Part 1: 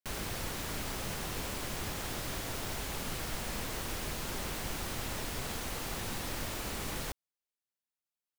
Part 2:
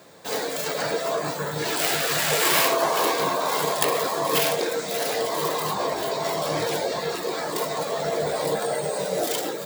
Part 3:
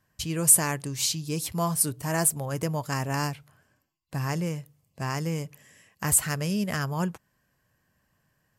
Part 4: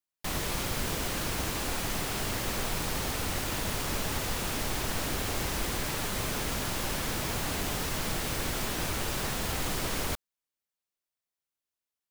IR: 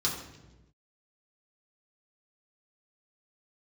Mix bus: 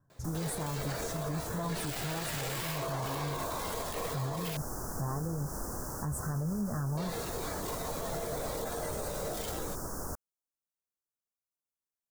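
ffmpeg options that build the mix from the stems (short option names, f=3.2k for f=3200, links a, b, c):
-filter_complex "[0:a]adelay=2100,volume=-10dB[a];[1:a]adelay=100,volume=-11dB,asplit=3[b][c][d];[b]atrim=end=4.57,asetpts=PTS-STARTPTS,afade=t=out:st=4.566:d=0.004:c=hsin[e];[c]atrim=start=4.57:end=6.97,asetpts=PTS-STARTPTS,volume=0[f];[d]atrim=start=6.97,asetpts=PTS-STARTPTS,afade=t=in:d=0.004:c=hsin[g];[e][f][g]concat=n=3:v=0:a=1[h];[2:a]flanger=delay=7:depth=7.9:regen=37:speed=0.72:shape=sinusoidal,bass=f=250:g=6,treble=f=4k:g=-15,volume=1.5dB[i];[3:a]volume=-6dB[j];[a][i][j]amix=inputs=3:normalize=0,asuperstop=centerf=2900:order=8:qfactor=0.7,alimiter=level_in=1.5dB:limit=-24dB:level=0:latency=1:release=126,volume=-1.5dB,volume=0dB[k];[h][k]amix=inputs=2:normalize=0,alimiter=level_in=2.5dB:limit=-24dB:level=0:latency=1:release=32,volume=-2.5dB"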